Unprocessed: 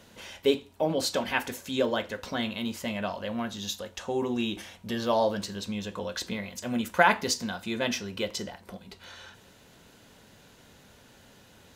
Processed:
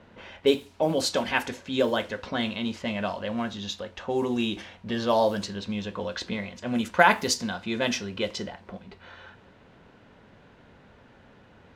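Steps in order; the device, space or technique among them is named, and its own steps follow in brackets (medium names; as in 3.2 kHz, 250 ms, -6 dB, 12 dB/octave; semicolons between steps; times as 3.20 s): cassette deck with a dynamic noise filter (white noise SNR 28 dB; level-controlled noise filter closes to 1.8 kHz, open at -22.5 dBFS); trim +2.5 dB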